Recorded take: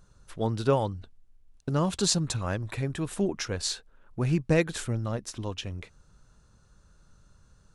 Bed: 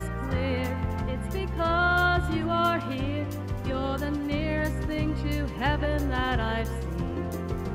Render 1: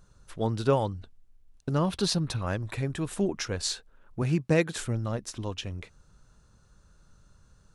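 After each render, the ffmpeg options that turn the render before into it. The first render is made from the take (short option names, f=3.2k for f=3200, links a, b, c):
-filter_complex "[0:a]asettb=1/sr,asplit=3[a][b][c];[a]atrim=end=1.784[d];[b]atrim=start=1.78:end=2.47,asetpts=PTS-STARTPTS,afade=t=in:d=0.004:c=qsin,afade=t=out:st=0.686:d=0.004:c=qsin,equalizer=f=7.3k:t=o:w=0.44:g=-13[e];[c]atrim=start=2.466[f];[d][e]acrossfade=d=0.004:c1=hsin:c2=qsin[g];[g][f]acrossfade=d=0.004:c1=qsin:c2=hsin,asettb=1/sr,asplit=3[h][i][j];[h]atrim=end=4.224[k];[i]atrim=start=4.22:end=4.78,asetpts=PTS-STARTPTS,afade=t=in:d=0.004:c=qsin,afade=t=out:st=0.556:d=0.004:c=qsin,highpass=100[l];[j]atrim=start=4.776[m];[k][l]acrossfade=d=0.004:c1=hsin:c2=qsin[n];[n][m]acrossfade=d=0.004:c1=qsin:c2=hsin"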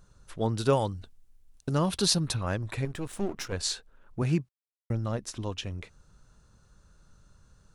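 -filter_complex "[0:a]asettb=1/sr,asplit=3[a][b][c];[a]atrim=end=0.584[d];[b]atrim=start=0.58:end=2.35,asetpts=PTS-STARTPTS,afade=t=in:d=0.004:c=qsin,afade=t=out:st=1.766:d=0.004:c=qsin,aemphasis=mode=production:type=cd[e];[c]atrim=start=2.346[f];[d][e]acrossfade=d=0.004:c1=hsin:c2=qsin[g];[g][f]acrossfade=d=0.004:c1=qsin:c2=hsin,asettb=1/sr,asplit=3[h][i][j];[h]atrim=end=2.854[k];[i]atrim=start=2.85:end=3.53,asetpts=PTS-STARTPTS,afade=t=in:d=0.004:c=qsin,afade=t=out:st=0.676:d=0.004:c=qsin,aeval=exprs='if(lt(val(0),0),0.251*val(0),val(0))':c=same[l];[j]atrim=start=3.526[m];[k][l]acrossfade=d=0.004:c1=hsin:c2=qsin[n];[n][m]acrossfade=d=0.004:c1=qsin:c2=hsin,asplit=3[o][p][q];[o]atrim=end=4.49,asetpts=PTS-STARTPTS,afade=t=out:st=4.486:d=0.004:c=hsin[r];[p]atrim=start=4.49:end=4.9,asetpts=PTS-STARTPTS,volume=0[s];[q]atrim=start=4.9,asetpts=PTS-STARTPTS,afade=t=in:d=0.004:c=hsin[t];[r][s][t]concat=n=3:v=0:a=1"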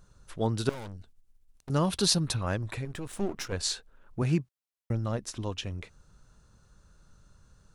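-filter_complex "[0:a]asettb=1/sr,asplit=3[a][b][c];[a]atrim=end=0.694[d];[b]atrim=start=0.69:end=1.7,asetpts=PTS-STARTPTS,afade=t=in:d=0.004:c=qsin,afade=t=out:st=1.006:d=0.004:c=qsin,aeval=exprs='(tanh(89.1*val(0)+0.8)-tanh(0.8))/89.1':c=same[e];[c]atrim=start=1.696[f];[d][e]acrossfade=d=0.004:c1=hsin:c2=qsin[g];[g][f]acrossfade=d=0.004:c1=qsin:c2=hsin,asettb=1/sr,asplit=3[h][i][j];[h]atrim=end=2.724[k];[i]atrim=start=2.72:end=3.16,asetpts=PTS-STARTPTS,afade=t=in:d=0.004:c=qsin,afade=t=out:st=0.436:d=0.004:c=qsin,acompressor=threshold=-32dB:ratio=2.5:attack=3.2:release=140:knee=1:detection=peak[l];[j]atrim=start=3.156[m];[k][l]acrossfade=d=0.004:c1=hsin:c2=qsin[n];[n][m]acrossfade=d=0.004:c1=qsin:c2=hsin"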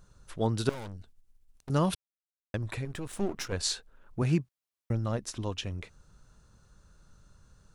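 -filter_complex "[0:a]asplit=3[a][b][c];[a]atrim=end=1.95,asetpts=PTS-STARTPTS,afade=t=out:st=1.946:d=0.004:c=hsin[d];[b]atrim=start=1.95:end=2.54,asetpts=PTS-STARTPTS,volume=0[e];[c]atrim=start=2.54,asetpts=PTS-STARTPTS,afade=t=in:d=0.004:c=hsin[f];[d][e][f]concat=n=3:v=0:a=1"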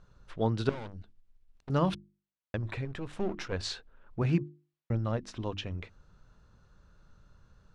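-af "lowpass=3.7k,bandreject=f=50:t=h:w=6,bandreject=f=100:t=h:w=6,bandreject=f=150:t=h:w=6,bandreject=f=200:t=h:w=6,bandreject=f=250:t=h:w=6,bandreject=f=300:t=h:w=6,bandreject=f=350:t=h:w=6"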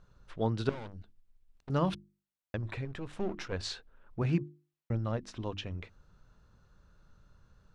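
-af "volume=-2dB"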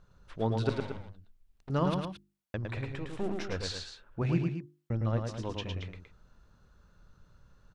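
-af "aecho=1:1:107.9|224.5:0.631|0.316"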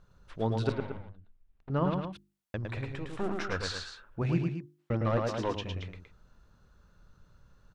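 -filter_complex "[0:a]asettb=1/sr,asplit=3[a][b][c];[a]atrim=end=0.724[d];[b]atrim=start=0.72:end=2.13,asetpts=PTS-STARTPTS,afade=t=in:d=0.004:c=qsin,afade=t=out:st=1.406:d=0.004:c=qsin,lowpass=2.5k[e];[c]atrim=start=2.126[f];[d][e]acrossfade=d=0.004:c1=hsin:c2=qsin[g];[g][f]acrossfade=d=0.004:c1=qsin:c2=hsin,asettb=1/sr,asplit=3[h][i][j];[h]atrim=end=3.174[k];[i]atrim=start=3.17:end=4.06,asetpts=PTS-STARTPTS,afade=t=in:d=0.004:c=qsin,afade=t=out:st=0.886:d=0.004:c=qsin,equalizer=f=1.3k:t=o:w=0.86:g=11[l];[j]atrim=start=4.056[m];[k][l]acrossfade=d=0.004:c1=hsin:c2=qsin[n];[n][m]acrossfade=d=0.004:c1=qsin:c2=hsin,asplit=3[o][p][q];[o]afade=t=out:st=4.78:d=0.02[r];[p]asplit=2[s][t];[t]highpass=f=720:p=1,volume=21dB,asoftclip=type=tanh:threshold=-18dB[u];[s][u]amix=inputs=2:normalize=0,lowpass=f=1.5k:p=1,volume=-6dB,afade=t=in:st=4.78:d=0.02,afade=t=out:st=5.54:d=0.02[v];[q]afade=t=in:st=5.54:d=0.02[w];[r][v][w]amix=inputs=3:normalize=0"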